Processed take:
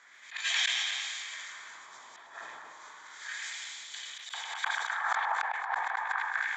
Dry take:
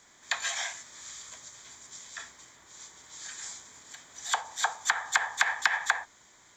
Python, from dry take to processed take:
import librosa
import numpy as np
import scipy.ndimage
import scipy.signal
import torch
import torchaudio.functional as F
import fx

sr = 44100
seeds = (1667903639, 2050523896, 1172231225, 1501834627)

p1 = fx.reverse_delay_fb(x, sr, ms=114, feedback_pct=60, wet_db=-3)
p2 = fx.auto_swell(p1, sr, attack_ms=225.0)
p3 = fx.dmg_crackle(p2, sr, seeds[0], per_s=62.0, level_db=-46.0)
p4 = p3 + fx.echo_stepped(p3, sr, ms=102, hz=2700.0, octaves=-1.4, feedback_pct=70, wet_db=-2.5, dry=0)
p5 = fx.gate_flip(p4, sr, shuts_db=-19.0, range_db=-26)
p6 = fx.filter_lfo_bandpass(p5, sr, shape='sine', hz=0.31, low_hz=840.0, high_hz=3100.0, q=1.7)
p7 = fx.sustainer(p6, sr, db_per_s=21.0)
y = p7 * librosa.db_to_amplitude(7.5)